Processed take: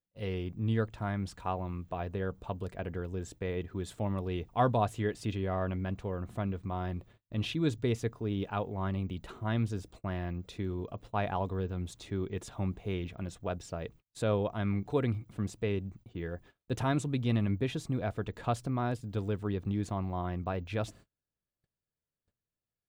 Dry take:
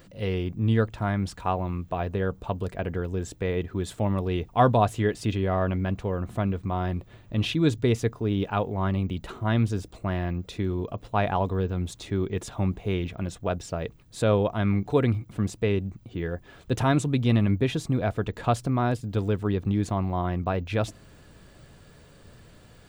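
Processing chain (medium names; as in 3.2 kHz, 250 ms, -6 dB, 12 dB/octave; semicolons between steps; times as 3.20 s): gate -44 dBFS, range -37 dB; trim -7.5 dB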